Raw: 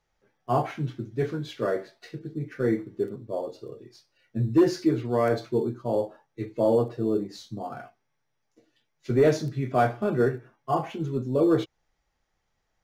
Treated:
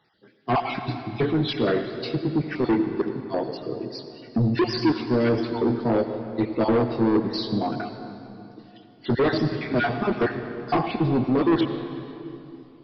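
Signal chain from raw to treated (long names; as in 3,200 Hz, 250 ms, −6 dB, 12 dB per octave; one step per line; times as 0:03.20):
time-frequency cells dropped at random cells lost 36%
high-pass filter 93 Hz 24 dB per octave
bass and treble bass −10 dB, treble +8 dB
notch filter 570 Hz, Q 12
in parallel at −1.5 dB: downward compressor, threshold −40 dBFS, peak gain reduction 20.5 dB
on the sum: low shelf with overshoot 360 Hz +7.5 dB, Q 1.5
soft clipping −24 dBFS, distortion −7 dB
on a send at −8 dB: convolution reverb RT60 3.0 s, pre-delay 77 ms
on the sum: downsampling to 11,025 Hz
level +7.5 dB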